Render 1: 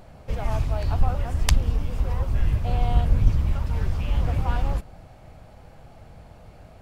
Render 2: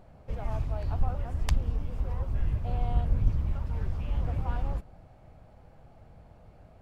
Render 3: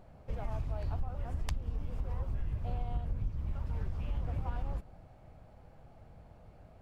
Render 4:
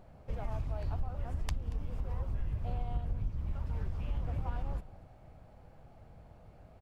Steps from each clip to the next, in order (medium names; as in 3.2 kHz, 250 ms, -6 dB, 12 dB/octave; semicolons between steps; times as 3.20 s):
treble shelf 2.1 kHz -8.5 dB; trim -6.5 dB
compression 6:1, threshold -28 dBFS, peak gain reduction 12 dB; trim -2 dB
delay 232 ms -19 dB